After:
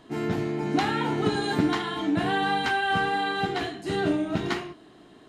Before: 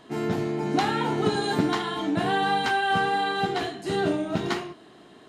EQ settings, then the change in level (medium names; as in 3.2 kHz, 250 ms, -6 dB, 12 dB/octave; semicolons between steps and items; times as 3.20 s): bass shelf 79 Hz +12 dB; peaking EQ 300 Hz +4.5 dB 0.27 oct; dynamic bell 2.1 kHz, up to +4 dB, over -42 dBFS, Q 0.94; -3.0 dB